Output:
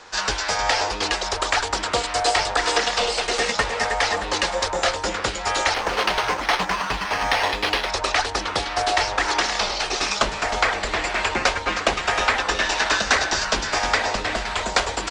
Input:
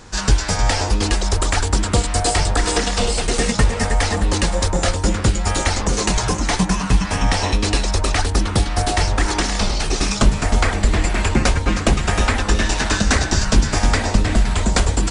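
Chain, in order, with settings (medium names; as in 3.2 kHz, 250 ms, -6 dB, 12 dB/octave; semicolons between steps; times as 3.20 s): 5.74–7.90 s: careless resampling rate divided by 6×, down none, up hold; three-band isolator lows -21 dB, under 440 Hz, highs -22 dB, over 6.3 kHz; delay 1044 ms -21.5 dB; trim +2 dB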